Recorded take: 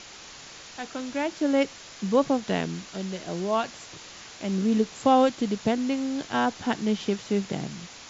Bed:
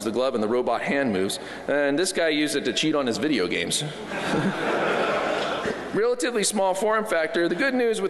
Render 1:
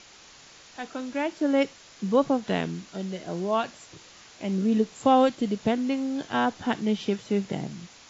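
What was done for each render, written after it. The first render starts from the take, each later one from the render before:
noise reduction from a noise print 6 dB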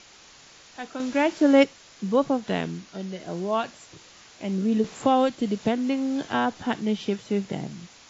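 0:01.00–0:01.64: clip gain +6 dB
0:02.78–0:03.20: Chebyshev low-pass filter 6,800 Hz, order 6
0:04.84–0:06.63: multiband upward and downward compressor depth 40%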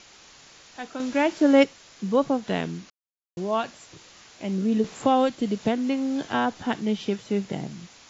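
0:02.90–0:03.37: silence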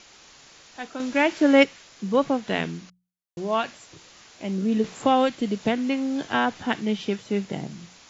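mains-hum notches 60/120/180 Hz
dynamic equaliser 2,200 Hz, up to +6 dB, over −40 dBFS, Q 0.98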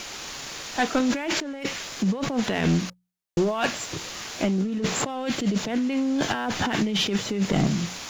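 compressor whose output falls as the input rises −32 dBFS, ratio −1
leveller curve on the samples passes 2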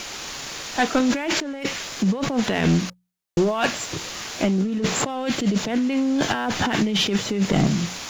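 level +3 dB

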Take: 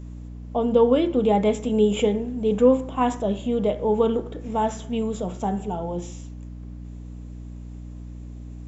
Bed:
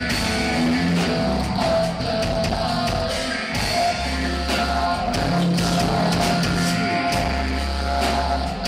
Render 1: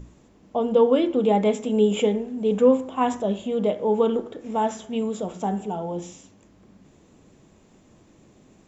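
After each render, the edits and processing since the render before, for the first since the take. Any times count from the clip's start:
mains-hum notches 60/120/180/240/300 Hz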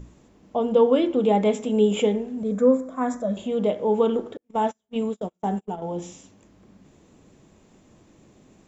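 0:02.43–0:03.37: phaser with its sweep stopped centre 580 Hz, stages 8
0:04.37–0:05.82: noise gate −29 dBFS, range −39 dB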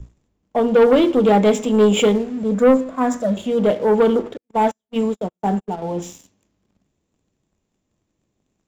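leveller curve on the samples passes 2
multiband upward and downward expander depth 40%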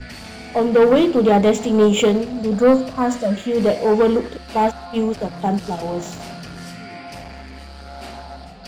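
mix in bed −14 dB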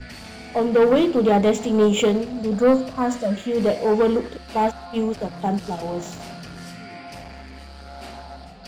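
level −3 dB

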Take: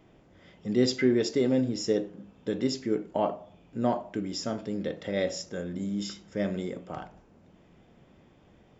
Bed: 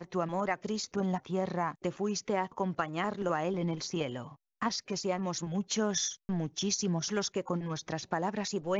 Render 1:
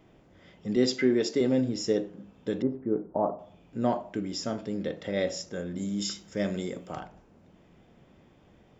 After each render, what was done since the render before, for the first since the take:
0:00.76–0:01.41: high-pass filter 150 Hz
0:02.62–0:03.39: low-pass filter 1,200 Hz 24 dB per octave
0:05.77–0:07.00: high-shelf EQ 4,900 Hz +11.5 dB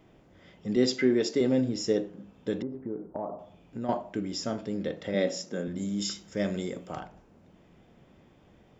0:02.62–0:03.89: downward compressor 3 to 1, threshold −32 dBFS
0:05.14–0:05.68: high-pass with resonance 210 Hz, resonance Q 1.7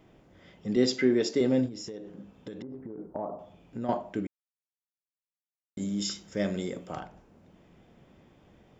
0:01.66–0:02.98: downward compressor 10 to 1, threshold −36 dBFS
0:04.27–0:05.77: silence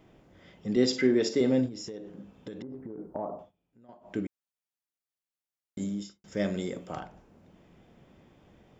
0:00.85–0:01.51: flutter between parallel walls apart 9.2 metres, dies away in 0.27 s
0:03.39–0:04.14: duck −23.5 dB, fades 0.13 s
0:05.81–0:06.24: fade out and dull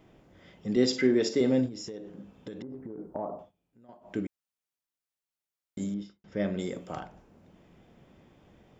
0:05.94–0:06.59: high-frequency loss of the air 230 metres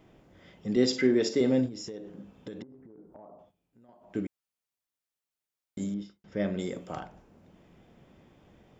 0:02.63–0:04.15: downward compressor 2.5 to 1, threshold −54 dBFS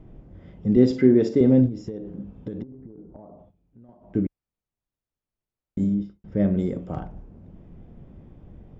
spectral tilt −4.5 dB per octave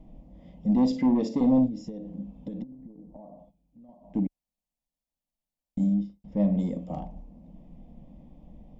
soft clipping −13 dBFS, distortion −13 dB
phaser with its sweep stopped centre 390 Hz, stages 6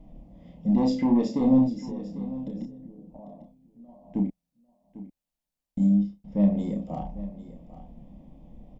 double-tracking delay 30 ms −4 dB
single-tap delay 798 ms −15.5 dB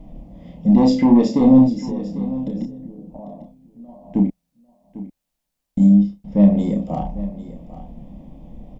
level +9 dB
brickwall limiter −3 dBFS, peak gain reduction 1.5 dB

